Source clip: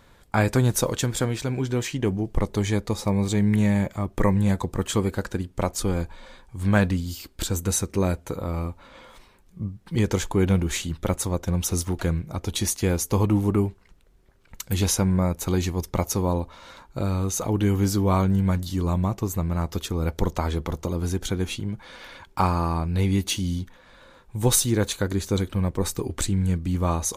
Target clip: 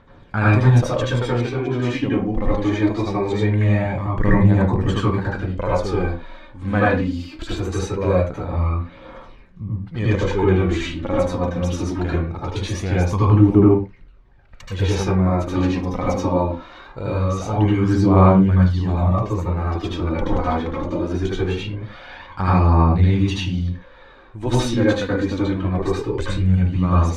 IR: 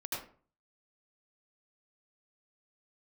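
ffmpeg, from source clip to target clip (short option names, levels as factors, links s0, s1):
-filter_complex "[0:a]lowpass=3200,aphaser=in_gain=1:out_gain=1:delay=4.1:decay=0.53:speed=0.22:type=triangular[s0];[1:a]atrim=start_sample=2205,afade=t=out:st=0.26:d=0.01,atrim=end_sample=11907[s1];[s0][s1]afir=irnorm=-1:irlink=0,volume=1.33"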